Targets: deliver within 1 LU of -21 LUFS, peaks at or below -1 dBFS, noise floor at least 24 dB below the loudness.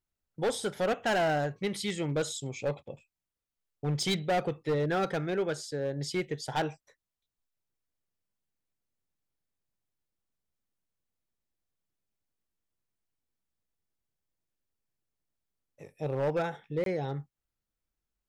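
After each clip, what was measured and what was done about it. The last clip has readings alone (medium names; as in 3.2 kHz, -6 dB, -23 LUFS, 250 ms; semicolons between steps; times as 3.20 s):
clipped samples 1.3%; clipping level -24.0 dBFS; dropouts 1; longest dropout 22 ms; loudness -32.0 LUFS; peak level -24.0 dBFS; loudness target -21.0 LUFS
-> clip repair -24 dBFS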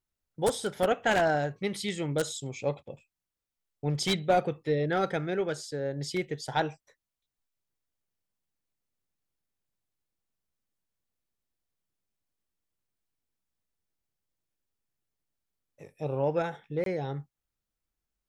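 clipped samples 0.0%; dropouts 1; longest dropout 22 ms
-> interpolate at 16.84 s, 22 ms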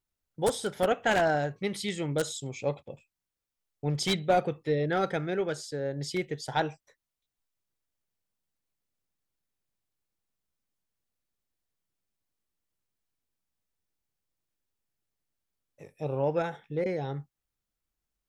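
dropouts 0; loudness -30.0 LUFS; peak level -15.0 dBFS; loudness target -21.0 LUFS
-> trim +9 dB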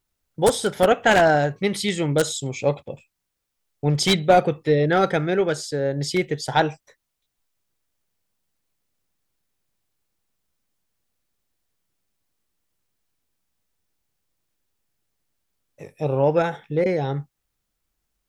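loudness -21.0 LUFS; peak level -6.0 dBFS; noise floor -79 dBFS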